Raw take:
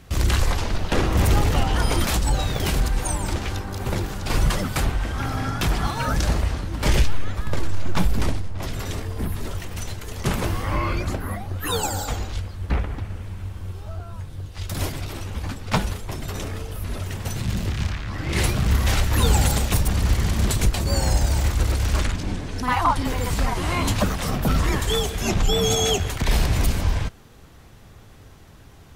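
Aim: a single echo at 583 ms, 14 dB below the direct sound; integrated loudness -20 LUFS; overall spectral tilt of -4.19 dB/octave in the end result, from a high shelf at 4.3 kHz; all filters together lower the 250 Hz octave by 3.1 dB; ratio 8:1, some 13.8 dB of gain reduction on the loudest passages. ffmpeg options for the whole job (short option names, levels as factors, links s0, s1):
-af "equalizer=f=250:t=o:g=-4.5,highshelf=f=4300:g=4,acompressor=threshold=0.0398:ratio=8,aecho=1:1:583:0.2,volume=4.47"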